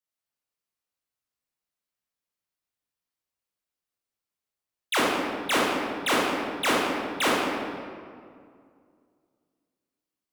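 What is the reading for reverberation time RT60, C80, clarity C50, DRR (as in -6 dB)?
2.2 s, 0.5 dB, -2.5 dB, -6.0 dB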